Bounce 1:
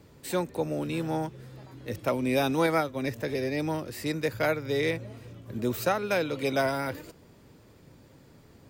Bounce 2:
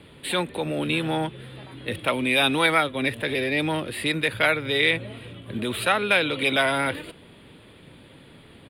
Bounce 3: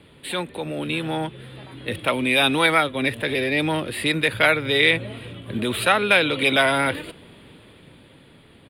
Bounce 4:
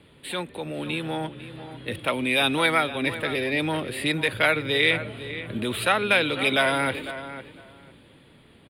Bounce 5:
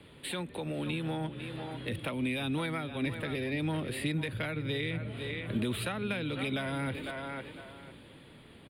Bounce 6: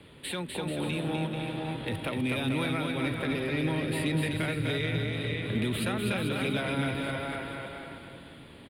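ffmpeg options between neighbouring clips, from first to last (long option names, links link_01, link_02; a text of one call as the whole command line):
ffmpeg -i in.wav -filter_complex "[0:a]firequalizer=gain_entry='entry(120,0);entry(170,3);entry(870,3);entry(1900,8);entry(3400,15);entry(5800,-18);entry(9700,10);entry(15000,-13)':delay=0.05:min_phase=1,acrossover=split=840|7100[link_01][link_02][link_03];[link_01]alimiter=limit=-23.5dB:level=0:latency=1[link_04];[link_04][link_02][link_03]amix=inputs=3:normalize=0,volume=3dB" out.wav
ffmpeg -i in.wav -af "dynaudnorm=framelen=210:gausssize=13:maxgain=11.5dB,volume=-2dB" out.wav
ffmpeg -i in.wav -filter_complex "[0:a]asplit=2[link_01][link_02];[link_02]adelay=501,lowpass=frequency=2700:poles=1,volume=-12dB,asplit=2[link_03][link_04];[link_04]adelay=501,lowpass=frequency=2700:poles=1,volume=0.18[link_05];[link_01][link_03][link_05]amix=inputs=3:normalize=0,volume=-3.5dB" out.wav
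ffmpeg -i in.wav -filter_complex "[0:a]acrossover=split=250[link_01][link_02];[link_02]acompressor=threshold=-36dB:ratio=6[link_03];[link_01][link_03]amix=inputs=2:normalize=0" out.wav
ffmpeg -i in.wav -filter_complex "[0:a]asplit=2[link_01][link_02];[link_02]asoftclip=type=hard:threshold=-29dB,volume=-12dB[link_03];[link_01][link_03]amix=inputs=2:normalize=0,aecho=1:1:250|437.5|578.1|683.6|762.7:0.631|0.398|0.251|0.158|0.1" out.wav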